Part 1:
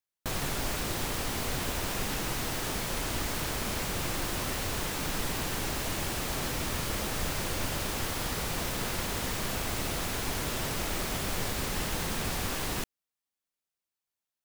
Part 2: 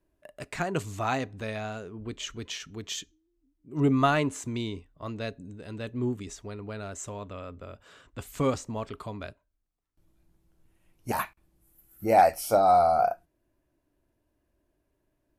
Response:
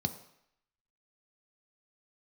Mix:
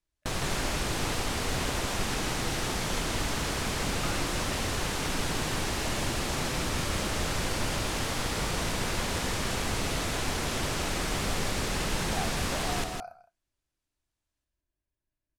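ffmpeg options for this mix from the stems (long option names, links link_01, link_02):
-filter_complex "[0:a]volume=1.5dB,asplit=2[link_01][link_02];[link_02]volume=-5dB[link_03];[1:a]equalizer=frequency=420:width=0.43:gain=-12,volume=-9.5dB,asplit=2[link_04][link_05];[link_05]volume=-15.5dB[link_06];[link_03][link_06]amix=inputs=2:normalize=0,aecho=0:1:162:1[link_07];[link_01][link_04][link_07]amix=inputs=3:normalize=0,lowpass=9400"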